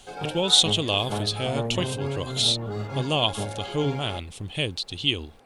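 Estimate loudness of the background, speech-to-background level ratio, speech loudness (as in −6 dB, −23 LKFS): −33.0 LKFS, 8.0 dB, −25.0 LKFS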